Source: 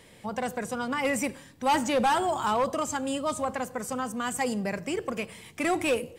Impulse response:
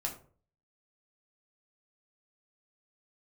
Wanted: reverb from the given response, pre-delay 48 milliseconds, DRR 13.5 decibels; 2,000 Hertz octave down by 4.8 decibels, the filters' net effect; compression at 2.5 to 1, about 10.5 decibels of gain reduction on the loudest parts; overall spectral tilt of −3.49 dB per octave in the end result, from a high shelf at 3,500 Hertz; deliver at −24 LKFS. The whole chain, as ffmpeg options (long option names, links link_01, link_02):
-filter_complex "[0:a]equalizer=frequency=2000:width_type=o:gain=-7.5,highshelf=frequency=3500:gain=4,acompressor=threshold=-38dB:ratio=2.5,asplit=2[link_01][link_02];[1:a]atrim=start_sample=2205,adelay=48[link_03];[link_02][link_03]afir=irnorm=-1:irlink=0,volume=-15.5dB[link_04];[link_01][link_04]amix=inputs=2:normalize=0,volume=13.5dB"